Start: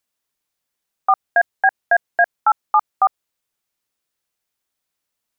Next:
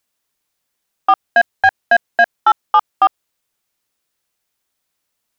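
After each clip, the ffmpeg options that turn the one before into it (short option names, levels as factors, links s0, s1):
-af "acontrast=59,volume=0.891"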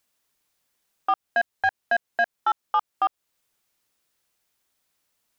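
-af "alimiter=limit=0.188:level=0:latency=1:release=319"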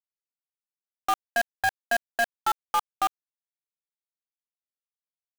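-af "acrusher=bits=5:dc=4:mix=0:aa=0.000001,volume=0.794"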